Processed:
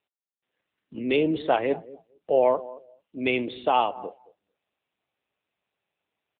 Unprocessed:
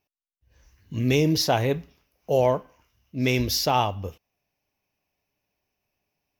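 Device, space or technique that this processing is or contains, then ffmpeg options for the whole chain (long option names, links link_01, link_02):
mobile call with aggressive noise cancelling: -filter_complex "[0:a]highpass=160,acrossover=split=220 7200:gain=0.112 1 0.112[link_01][link_02][link_03];[link_01][link_02][link_03]amix=inputs=3:normalize=0,asplit=2[link_04][link_05];[link_05]adelay=223,lowpass=frequency=1200:poles=1,volume=-16.5dB,asplit=2[link_06][link_07];[link_07]adelay=223,lowpass=frequency=1200:poles=1,volume=0.24[link_08];[link_04][link_06][link_08]amix=inputs=3:normalize=0,afftdn=noise_reduction=12:noise_floor=-42,volume=1.5dB" -ar 8000 -c:a libopencore_amrnb -b:a 7950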